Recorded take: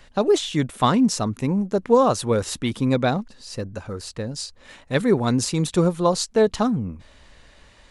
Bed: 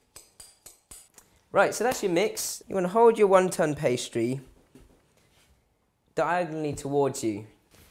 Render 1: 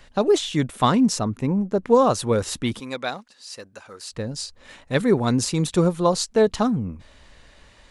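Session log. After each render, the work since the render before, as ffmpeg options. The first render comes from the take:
-filter_complex "[0:a]asettb=1/sr,asplit=3[s0][s1][s2];[s0]atrim=end=1.194[s3];[s1]atrim=start=1.19:end=1.84,asetpts=PTS-STARTPTS,afade=t=in:d=0.004:c=qsin,afade=t=out:st=0.646:d=0.004:c=qsin,highshelf=f=3100:g=-8.5[s4];[s2]atrim=start=1.836[s5];[s3][s4]acrossfade=d=0.004:c1=hsin:c2=qsin[s6];[s6][s5]acrossfade=d=0.004:c1=qsin:c2=hsin,asettb=1/sr,asplit=3[s7][s8][s9];[s7]atrim=end=2.804[s10];[s8]atrim=start=2.8:end=4.12,asetpts=PTS-STARTPTS,afade=t=in:d=0.004:c=qsin,afade=t=out:st=1.316:d=0.004:c=qsin,highpass=f=1300:p=1[s11];[s9]atrim=start=4.116[s12];[s10][s11]acrossfade=d=0.004:c1=hsin:c2=qsin[s13];[s13][s12]acrossfade=d=0.004:c1=qsin:c2=hsin"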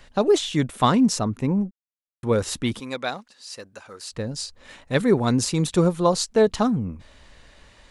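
-filter_complex "[0:a]asplit=3[s0][s1][s2];[s0]atrim=end=1.71,asetpts=PTS-STARTPTS,afade=t=out:st=1.706:d=0.004:c=hsin[s3];[s1]atrim=start=1.71:end=2.23,asetpts=PTS-STARTPTS,volume=0[s4];[s2]atrim=start=2.23,asetpts=PTS-STARTPTS,afade=t=in:d=0.004:c=hsin[s5];[s3][s4][s5]concat=n=3:v=0:a=1"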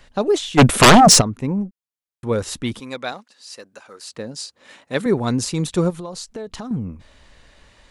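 -filter_complex "[0:a]asplit=3[s0][s1][s2];[s0]afade=t=out:st=0.57:d=0.02[s3];[s1]aeval=exprs='0.596*sin(PI/2*5.62*val(0)/0.596)':c=same,afade=t=in:st=0.57:d=0.02,afade=t=out:st=1.2:d=0.02[s4];[s2]afade=t=in:st=1.2:d=0.02[s5];[s3][s4][s5]amix=inputs=3:normalize=0,asettb=1/sr,asplit=3[s6][s7][s8];[s6]atrim=end=3.124[s9];[s7]atrim=start=3.12:end=5.06,asetpts=PTS-STARTPTS,afade=t=in:d=0.004:c=qsin,afade=t=out:st=1.936:d=0.004:c=qsin,highpass=190[s10];[s8]atrim=start=5.056[s11];[s9][s10]acrossfade=d=0.004:c1=hsin:c2=qsin[s12];[s12][s11]acrossfade=d=0.004:c1=qsin:c2=hsin,asettb=1/sr,asplit=3[s13][s14][s15];[s13]atrim=end=5.904[s16];[s14]atrim=start=5.9:end=6.71,asetpts=PTS-STARTPTS,afade=t=in:d=0.004:c=qsin,afade=t=out:st=0.806:d=0.004:c=qsin,acompressor=threshold=0.0398:ratio=8:attack=3.2:release=140:knee=1:detection=peak[s17];[s15]atrim=start=6.706[s18];[s16][s17]acrossfade=d=0.004:c1=hsin:c2=qsin[s19];[s19][s18]acrossfade=d=0.004:c1=qsin:c2=hsin"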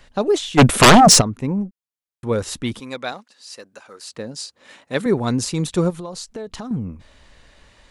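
-af anull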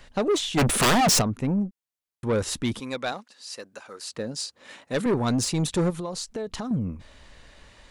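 -af "asoftclip=type=tanh:threshold=0.126"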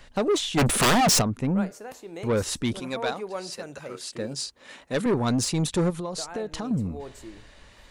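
-filter_complex "[1:a]volume=0.188[s0];[0:a][s0]amix=inputs=2:normalize=0"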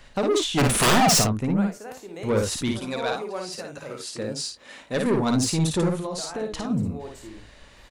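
-af "aecho=1:1:55|74:0.668|0.178"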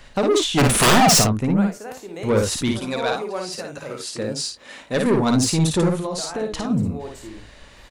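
-af "volume=1.58"

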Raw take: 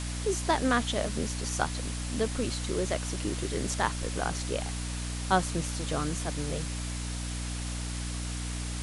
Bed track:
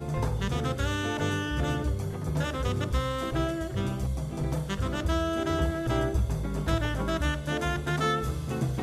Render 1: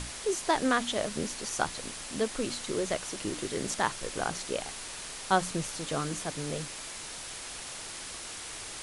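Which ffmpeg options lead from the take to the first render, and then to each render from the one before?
-af "bandreject=f=60:t=h:w=6,bandreject=f=120:t=h:w=6,bandreject=f=180:t=h:w=6,bandreject=f=240:t=h:w=6,bandreject=f=300:t=h:w=6"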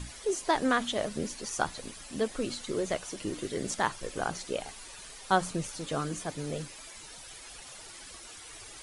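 -af "afftdn=nr=11:nf=-42"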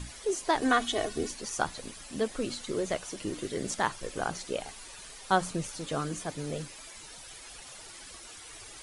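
-filter_complex "[0:a]asettb=1/sr,asplit=3[s0][s1][s2];[s0]atrim=end=0.614[s3];[s1]atrim=start=0.61:end=1.31,asetpts=PTS-STARTPTS,afade=t=in:d=0.004:c=qsin,afade=t=out:st=0.696:d=0.004:c=qsin,aecho=1:1:2.7:0.85,atrim=end_sample=30870[s4];[s2]atrim=start=1.306[s5];[s3][s4]acrossfade=d=0.004:c1=hsin:c2=qsin[s6];[s6][s5]acrossfade=d=0.004:c1=qsin:c2=hsin"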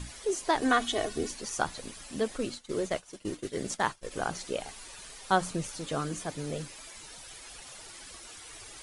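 -filter_complex "[0:a]asplit=3[s0][s1][s2];[s0]afade=t=out:st=2.37:d=0.02[s3];[s1]agate=range=0.0224:threshold=0.02:ratio=3:release=100:detection=peak,afade=t=in:st=2.37:d=0.02,afade=t=out:st=4.1:d=0.02[s4];[s2]afade=t=in:st=4.1:d=0.02[s5];[s3][s4][s5]amix=inputs=3:normalize=0"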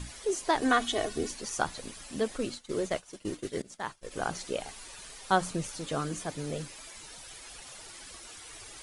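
-filter_complex "[0:a]asplit=2[s0][s1];[s0]atrim=end=3.62,asetpts=PTS-STARTPTS,afade=t=out:st=3.616:d=0.004:c=hsin:silence=0.0794328[s2];[s1]atrim=start=3.62,asetpts=PTS-STARTPTS,afade=t=in:d=0.64:silence=0.0794328[s3];[s2][s3]concat=n=2:v=0:a=1"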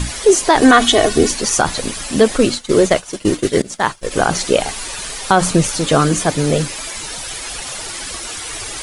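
-af "acontrast=90,alimiter=level_in=4.22:limit=0.891:release=50:level=0:latency=1"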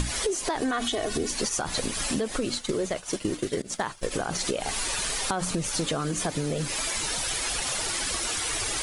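-af "alimiter=limit=0.299:level=0:latency=1:release=152,acompressor=threshold=0.0562:ratio=6"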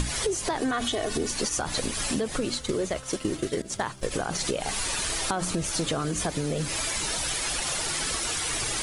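-filter_complex "[1:a]volume=0.15[s0];[0:a][s0]amix=inputs=2:normalize=0"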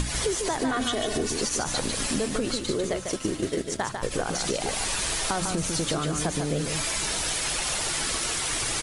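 -af "aecho=1:1:148:0.531"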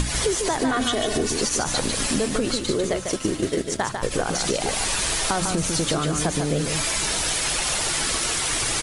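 -af "volume=1.58"

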